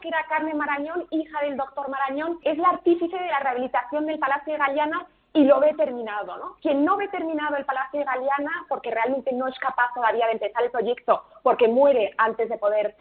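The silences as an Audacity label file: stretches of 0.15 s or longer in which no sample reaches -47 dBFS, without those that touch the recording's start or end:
5.070000	5.350000	silence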